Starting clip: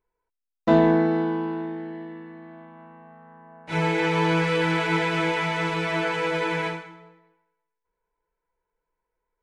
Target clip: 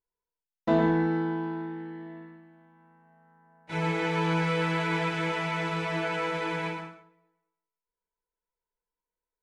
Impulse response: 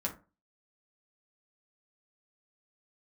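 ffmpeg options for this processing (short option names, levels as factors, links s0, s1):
-filter_complex "[0:a]agate=range=0.398:threshold=0.00891:ratio=16:detection=peak,asplit=2[s0][s1];[1:a]atrim=start_sample=2205,adelay=111[s2];[s1][s2]afir=irnorm=-1:irlink=0,volume=0.398[s3];[s0][s3]amix=inputs=2:normalize=0,volume=0.501"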